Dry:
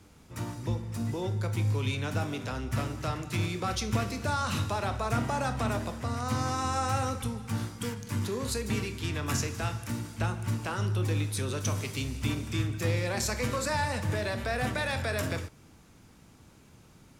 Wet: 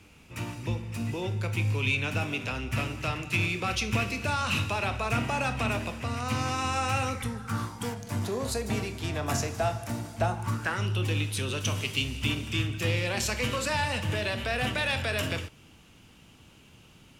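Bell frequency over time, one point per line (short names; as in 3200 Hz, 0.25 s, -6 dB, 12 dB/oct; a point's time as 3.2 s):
bell +14 dB 0.47 oct
7.05 s 2600 Hz
7.97 s 690 Hz
10.3 s 690 Hz
10.9 s 2900 Hz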